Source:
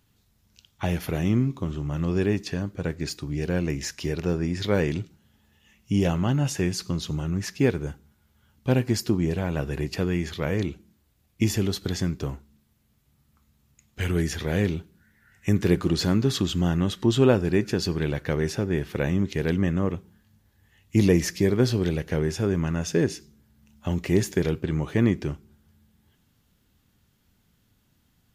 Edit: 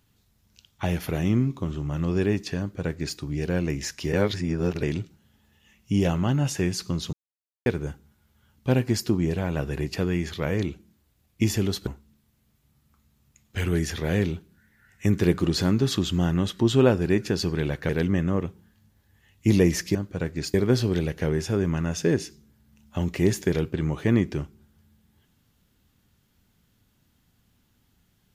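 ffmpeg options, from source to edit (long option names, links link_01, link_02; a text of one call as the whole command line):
ffmpeg -i in.wav -filter_complex "[0:a]asplit=9[link_01][link_02][link_03][link_04][link_05][link_06][link_07][link_08][link_09];[link_01]atrim=end=4.132[link_10];[link_02]atrim=start=4.128:end=4.832,asetpts=PTS-STARTPTS,areverse[link_11];[link_03]atrim=start=4.828:end=7.13,asetpts=PTS-STARTPTS,afade=type=out:start_time=2.298:duration=0.004:curve=hsin[link_12];[link_04]atrim=start=7.13:end=7.66,asetpts=PTS-STARTPTS,volume=0[link_13];[link_05]atrim=start=7.66:end=11.872,asetpts=PTS-STARTPTS,afade=type=in:duration=0.004:curve=hsin[link_14];[link_06]atrim=start=12.298:end=18.322[link_15];[link_07]atrim=start=19.378:end=21.442[link_16];[link_08]atrim=start=2.588:end=3.182[link_17];[link_09]atrim=start=21.438[link_18];[link_10][link_11]acrossfade=duration=0.004:curve1=hsin:curve2=hsin[link_19];[link_12][link_13][link_14]concat=n=3:v=0:a=1[link_20];[link_19][link_20]acrossfade=duration=0.004:curve1=hsin:curve2=hsin[link_21];[link_21][link_15]acrossfade=duration=0.004:curve1=hsin:curve2=hsin[link_22];[link_22][link_16]acrossfade=duration=0.004:curve1=hsin:curve2=hsin[link_23];[link_23][link_17]acrossfade=duration=0.004:curve1=hsin:curve2=hsin[link_24];[link_24][link_18]acrossfade=duration=0.004:curve1=hsin:curve2=hsin" out.wav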